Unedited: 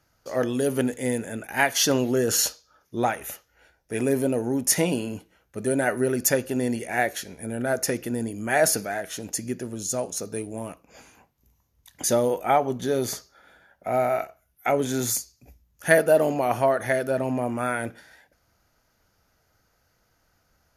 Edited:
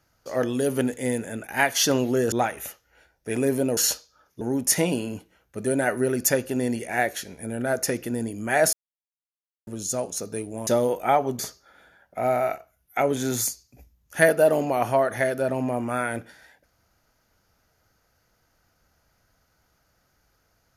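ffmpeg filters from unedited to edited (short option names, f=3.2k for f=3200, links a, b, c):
-filter_complex "[0:a]asplit=8[a][b][c][d][e][f][g][h];[a]atrim=end=2.322[i];[b]atrim=start=2.958:end=4.412[j];[c]atrim=start=2.318:end=2.962[k];[d]atrim=start=4.408:end=8.73,asetpts=PTS-STARTPTS,afade=t=out:st=4.318:d=0.004:c=hsin[l];[e]atrim=start=8.73:end=9.67,asetpts=PTS-STARTPTS,volume=0[m];[f]atrim=start=9.67:end=10.672,asetpts=PTS-STARTPTS,afade=t=in:d=0.004:c=hsin[n];[g]atrim=start=12.078:end=12.802[o];[h]atrim=start=13.078[p];[i][j]acrossfade=d=0.004:c1=hsin:c2=hsin[q];[q][k]acrossfade=d=0.004:c1=hsin:c2=hsin[r];[l][m][n]concat=n=3:v=0:a=1[s];[r][s]acrossfade=d=0.004:c1=hsin:c2=hsin[t];[t][o]acrossfade=d=0.004:c1=hsin:c2=hsin[u];[u][p]acrossfade=d=0.004:c1=hsin:c2=hsin"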